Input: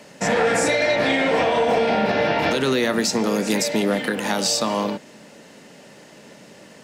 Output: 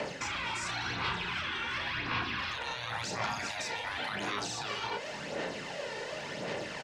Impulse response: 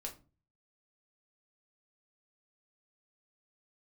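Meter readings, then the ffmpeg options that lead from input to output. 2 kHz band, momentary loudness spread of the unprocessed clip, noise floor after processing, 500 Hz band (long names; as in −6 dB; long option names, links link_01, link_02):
−9.5 dB, 4 LU, −41 dBFS, −20.0 dB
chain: -filter_complex "[0:a]lowpass=4800,equalizer=frequency=220:width=1.5:gain=-8.5,afftfilt=real='re*lt(hypot(re,im),0.126)':imag='im*lt(hypot(re,im),0.126)':win_size=1024:overlap=0.75,areverse,acompressor=threshold=-35dB:ratio=5,areverse,alimiter=level_in=7.5dB:limit=-24dB:level=0:latency=1:release=54,volume=-7.5dB,acrossover=split=510|1700[link_01][link_02][link_03];[link_01]acompressor=threshold=-53dB:ratio=4[link_04];[link_02]acompressor=threshold=-45dB:ratio=4[link_05];[link_03]acompressor=threshold=-47dB:ratio=4[link_06];[link_04][link_05][link_06]amix=inputs=3:normalize=0,aphaser=in_gain=1:out_gain=1:delay=2.2:decay=0.52:speed=0.92:type=sinusoidal,asplit=2[link_07][link_08];[link_08]adelay=34,volume=-7.5dB[link_09];[link_07][link_09]amix=inputs=2:normalize=0,volume=7dB"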